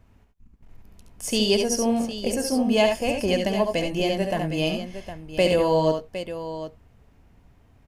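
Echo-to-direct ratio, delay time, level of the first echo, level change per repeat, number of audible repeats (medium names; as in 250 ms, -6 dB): -4.0 dB, 70 ms, -6.0 dB, no regular repeats, 2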